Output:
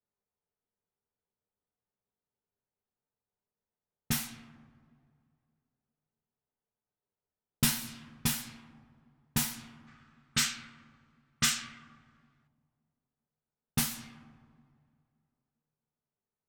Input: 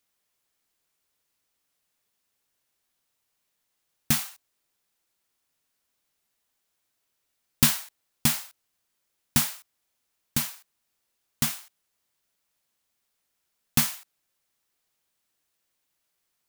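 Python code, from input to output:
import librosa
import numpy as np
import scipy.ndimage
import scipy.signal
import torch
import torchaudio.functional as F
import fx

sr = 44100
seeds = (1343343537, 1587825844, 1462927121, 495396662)

y = fx.rev_double_slope(x, sr, seeds[0], early_s=0.21, late_s=2.5, knee_db=-18, drr_db=-0.5)
y = fx.env_lowpass(y, sr, base_hz=840.0, full_db=-19.0)
y = fx.spec_box(y, sr, start_s=9.87, length_s=2.6, low_hz=1100.0, high_hz=8700.0, gain_db=11)
y = y * librosa.db_to_amplitude(-9.0)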